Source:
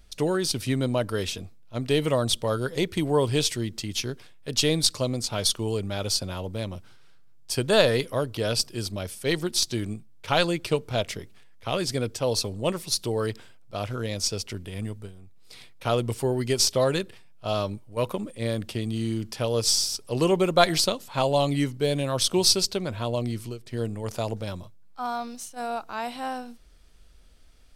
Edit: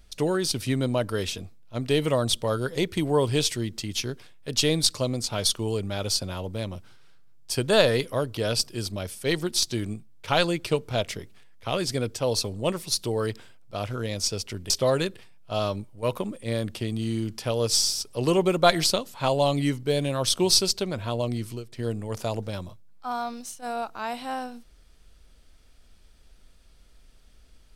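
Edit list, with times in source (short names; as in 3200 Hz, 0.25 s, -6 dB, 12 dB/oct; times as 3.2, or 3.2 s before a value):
14.7–16.64 cut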